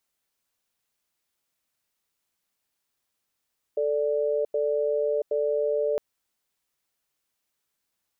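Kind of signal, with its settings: cadence 440 Hz, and 587 Hz, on 0.68 s, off 0.09 s, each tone -25 dBFS 2.21 s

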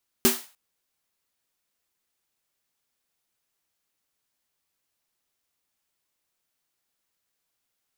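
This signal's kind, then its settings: snare drum length 0.30 s, tones 240 Hz, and 380 Hz, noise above 620 Hz, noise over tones 0 dB, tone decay 0.21 s, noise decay 0.37 s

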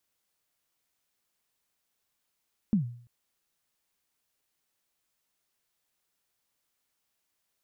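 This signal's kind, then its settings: kick drum length 0.34 s, from 230 Hz, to 120 Hz, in 115 ms, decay 0.53 s, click off, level -18 dB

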